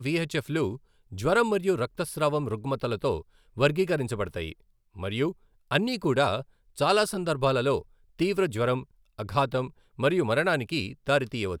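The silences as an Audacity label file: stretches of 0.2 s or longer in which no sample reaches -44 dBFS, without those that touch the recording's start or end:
0.770000	1.120000	silence
3.220000	3.570000	silence
4.520000	4.960000	silence
5.320000	5.710000	silence
6.430000	6.760000	silence
7.820000	8.190000	silence
8.830000	9.180000	silence
9.700000	9.990000	silence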